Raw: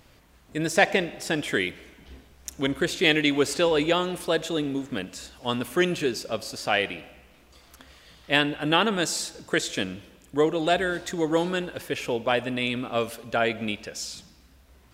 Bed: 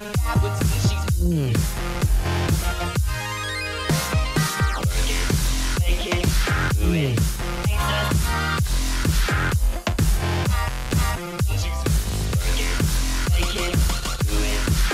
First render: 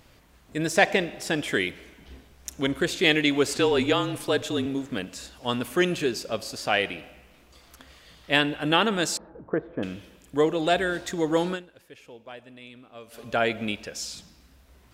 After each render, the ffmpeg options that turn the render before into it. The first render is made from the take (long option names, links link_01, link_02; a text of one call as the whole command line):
ffmpeg -i in.wav -filter_complex "[0:a]asettb=1/sr,asplit=3[link_01][link_02][link_03];[link_01]atrim=end=3.554[link_04];[link_02]atrim=start=3.55:end=4.66,asetpts=PTS-STARTPTS,afade=type=in:duration=0.004:curve=qsin,afade=type=out:start_time=1.106:duration=0.004:curve=qsin,afreqshift=-38[link_05];[link_03]atrim=start=4.656[link_06];[link_04][link_05]acrossfade=duration=0.004:curve1=hsin:curve2=qsin[link_07];[link_07][link_06]acrossfade=duration=0.004:curve1=qsin:curve2=hsin,asettb=1/sr,asplit=3[link_08][link_09][link_10];[link_08]atrim=end=9.174[link_11];[link_09]atrim=start=9.17:end=9.83,asetpts=PTS-STARTPTS,afade=type=in:duration=0.004:curve=qsin,afade=type=out:start_time=0.656:duration=0.004:curve=qsin,lowpass=frequency=1200:width=0.5412,lowpass=frequency=1200:width=1.3066[link_12];[link_10]atrim=start=9.826[link_13];[link_11][link_12]acrossfade=duration=0.004:curve1=hsin:curve2=qsin[link_14];[link_14][link_13]acrossfade=duration=0.004:curve1=qsin:curve2=hsin,asplit=3[link_15][link_16][link_17];[link_15]atrim=end=11.92,asetpts=PTS-STARTPTS,afade=type=out:start_time=11.53:duration=0.39:curve=exp:silence=0.11885[link_18];[link_16]atrim=start=11.92:end=12.79,asetpts=PTS-STARTPTS,volume=-18.5dB[link_19];[link_17]atrim=start=12.79,asetpts=PTS-STARTPTS,afade=type=in:duration=0.39:curve=exp:silence=0.11885[link_20];[link_18][link_19][link_20]concat=n=3:v=0:a=1" out.wav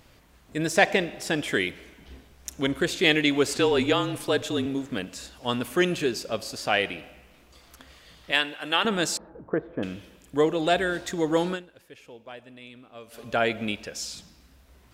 ffmpeg -i in.wav -filter_complex "[0:a]asettb=1/sr,asplit=3[link_01][link_02][link_03];[link_01]atrim=end=8.314[link_04];[link_02]atrim=start=8.31:end=8.85,asetpts=PTS-STARTPTS,afade=type=in:duration=0.004:curve=qsin,afade=type=out:start_time=0.536:duration=0.004:curve=qsin,highpass=frequency=1000:poles=1[link_05];[link_03]atrim=start=8.846[link_06];[link_04][link_05]acrossfade=duration=0.004:curve1=hsin:curve2=qsin[link_07];[link_07][link_06]acrossfade=duration=0.004:curve1=qsin:curve2=hsin" out.wav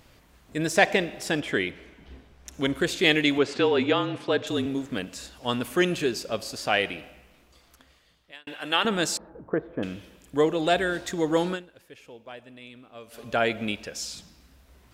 ffmpeg -i in.wav -filter_complex "[0:a]asettb=1/sr,asplit=3[link_01][link_02][link_03];[link_01]atrim=end=1.404[link_04];[link_02]atrim=start=1.4:end=2.54,asetpts=PTS-STARTPTS,afade=type=in:duration=0.004:curve=qsin,afade=type=out:start_time=1.136:duration=0.004:curve=qsin,lowpass=frequency=3100:poles=1[link_05];[link_03]atrim=start=2.536[link_06];[link_04][link_05]acrossfade=duration=0.004:curve1=hsin:curve2=qsin[link_07];[link_07][link_06]acrossfade=duration=0.004:curve1=qsin:curve2=hsin,asettb=1/sr,asplit=3[link_08][link_09][link_10];[link_08]atrim=end=3.384[link_11];[link_09]atrim=start=3.38:end=4.47,asetpts=PTS-STARTPTS,afade=type=in:duration=0.004:curve=qsin,afade=type=out:start_time=1.086:duration=0.004:curve=qsin,highpass=120,lowpass=3800[link_12];[link_10]atrim=start=4.466[link_13];[link_11][link_12]acrossfade=duration=0.004:curve1=hsin:curve2=qsin[link_14];[link_14][link_13]acrossfade=duration=0.004:curve1=qsin:curve2=hsin,asplit=2[link_15][link_16];[link_15]atrim=end=8.47,asetpts=PTS-STARTPTS,afade=type=out:start_time=7.01:duration=1.46[link_17];[link_16]atrim=start=8.47,asetpts=PTS-STARTPTS,afade=type=in:duration=0.004:curve=hsin[link_18];[link_17][link_18]concat=n=2:v=0:a=1" out.wav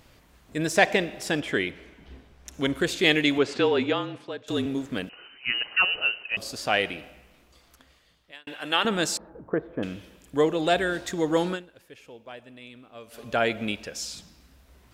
ffmpeg -i in.wav -filter_complex "[0:a]asettb=1/sr,asplit=3[link_01][link_02][link_03];[link_01]atrim=end=5.094[link_04];[link_02]atrim=start=5.09:end=6.37,asetpts=PTS-STARTPTS,afade=type=in:duration=0.004:curve=qsin,afade=type=out:start_time=1.276:duration=0.004:curve=qsin,lowpass=frequency=2600:width_type=q:width=0.5098,lowpass=frequency=2600:width_type=q:width=0.6013,lowpass=frequency=2600:width_type=q:width=0.9,lowpass=frequency=2600:width_type=q:width=2.563,afreqshift=-3100[link_05];[link_03]atrim=start=6.366[link_06];[link_04][link_05]acrossfade=duration=0.004:curve1=hsin:curve2=qsin[link_07];[link_07][link_06]acrossfade=duration=0.004:curve1=qsin:curve2=hsin,asplit=2[link_08][link_09];[link_08]atrim=end=4.48,asetpts=PTS-STARTPTS,afade=type=out:start_time=3.7:duration=0.78:silence=0.105925[link_10];[link_09]atrim=start=4.48,asetpts=PTS-STARTPTS,afade=type=in:duration=0.004:curve=hsin:silence=0.105925[link_11];[link_10][link_11]concat=n=2:v=0:a=1" out.wav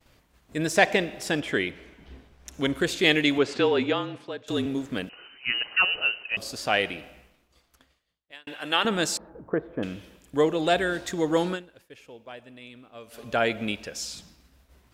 ffmpeg -i in.wav -af "agate=range=-33dB:threshold=-51dB:ratio=3:detection=peak" out.wav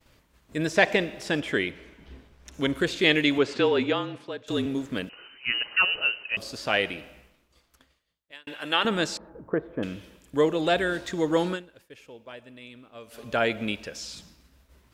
ffmpeg -i in.wav -filter_complex "[0:a]acrossover=split=5500[link_01][link_02];[link_02]acompressor=threshold=-46dB:ratio=4:attack=1:release=60[link_03];[link_01][link_03]amix=inputs=2:normalize=0,bandreject=frequency=740:width=12" out.wav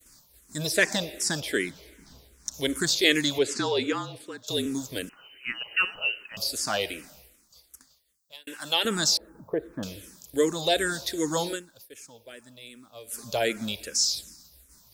ffmpeg -i in.wav -filter_complex "[0:a]aexciter=amount=6.7:drive=5.3:freq=4100,asplit=2[link_01][link_02];[link_02]afreqshift=-2.6[link_03];[link_01][link_03]amix=inputs=2:normalize=1" out.wav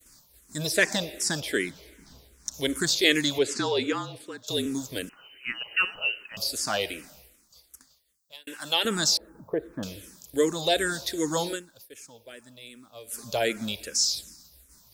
ffmpeg -i in.wav -af anull out.wav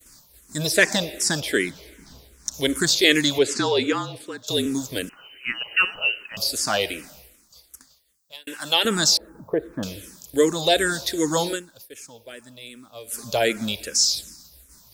ffmpeg -i in.wav -af "volume=5dB,alimiter=limit=-2dB:level=0:latency=1" out.wav